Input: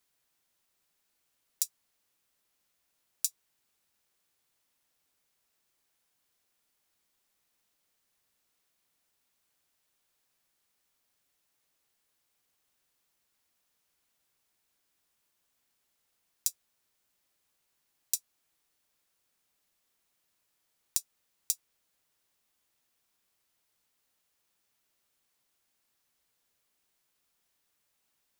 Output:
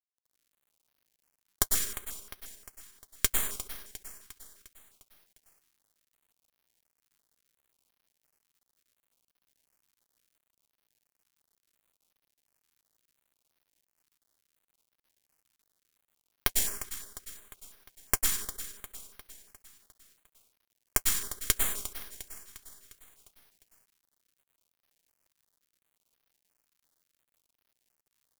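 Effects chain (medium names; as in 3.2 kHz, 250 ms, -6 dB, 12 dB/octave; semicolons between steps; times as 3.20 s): treble shelf 4.9 kHz +6.5 dB; Chebyshev shaper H 2 -11 dB, 4 -8 dB, 6 -9 dB, 7 -33 dB, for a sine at 3 dBFS; static phaser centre 310 Hz, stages 4; feedback delay 353 ms, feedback 54%, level -13 dB; plate-style reverb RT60 1 s, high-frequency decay 0.65×, pre-delay 90 ms, DRR -5 dB; half-wave rectifier; word length cut 10-bit, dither none; step-sequenced notch 5.7 Hz 590–7600 Hz; trim +2 dB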